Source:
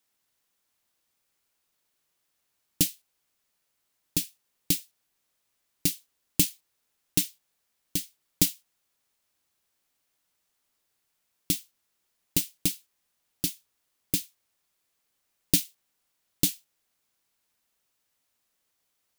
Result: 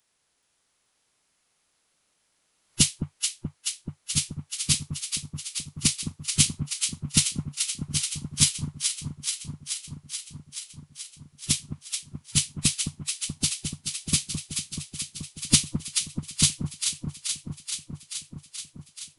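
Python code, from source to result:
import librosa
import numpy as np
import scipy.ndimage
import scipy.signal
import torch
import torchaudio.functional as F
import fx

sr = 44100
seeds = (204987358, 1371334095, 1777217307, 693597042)

y = fx.pitch_keep_formants(x, sr, semitones=-12.0)
y = fx.echo_alternate(y, sr, ms=215, hz=1100.0, feedback_pct=86, wet_db=-5)
y = y * librosa.db_to_amplitude(5.5)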